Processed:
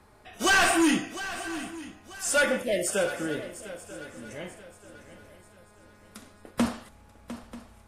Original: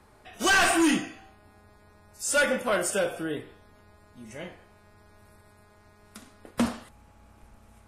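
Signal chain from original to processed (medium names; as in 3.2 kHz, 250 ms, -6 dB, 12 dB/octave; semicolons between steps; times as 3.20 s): spectral selection erased 2.63–2.87 s, 710–1700 Hz; shuffle delay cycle 937 ms, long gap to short 3:1, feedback 36%, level -14 dB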